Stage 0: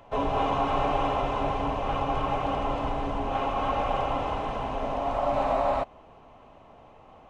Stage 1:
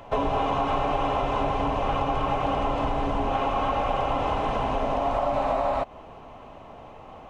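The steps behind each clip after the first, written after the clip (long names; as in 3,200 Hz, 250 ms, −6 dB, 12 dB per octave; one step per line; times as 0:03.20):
downward compressor, threshold −29 dBFS, peak gain reduction 8 dB
level +7.5 dB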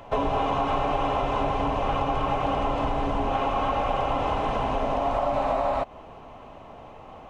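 no processing that can be heard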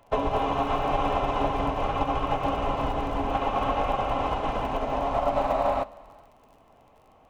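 surface crackle 31 per second −35 dBFS
reverb whose tail is shaped and stops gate 490 ms flat, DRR 7 dB
expander for the loud parts 2.5 to 1, over −32 dBFS
level +2 dB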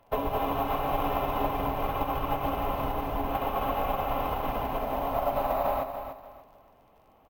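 repeating echo 292 ms, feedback 27%, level −9 dB
bad sample-rate conversion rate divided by 3×, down filtered, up hold
level −3.5 dB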